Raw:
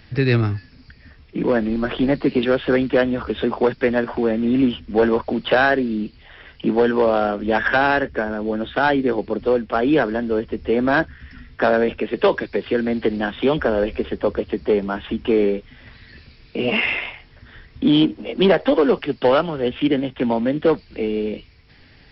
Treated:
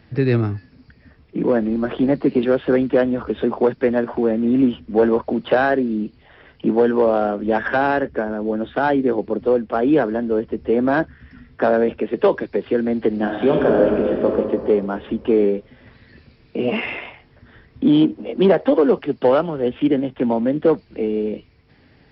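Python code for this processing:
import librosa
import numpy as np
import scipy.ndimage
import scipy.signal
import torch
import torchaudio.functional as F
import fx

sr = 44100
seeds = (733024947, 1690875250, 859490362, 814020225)

y = fx.reverb_throw(x, sr, start_s=13.1, length_s=1.21, rt60_s=2.2, drr_db=0.5)
y = fx.highpass(y, sr, hz=150.0, slope=6)
y = fx.tilt_shelf(y, sr, db=6.5, hz=1400.0)
y = y * librosa.db_to_amplitude(-3.5)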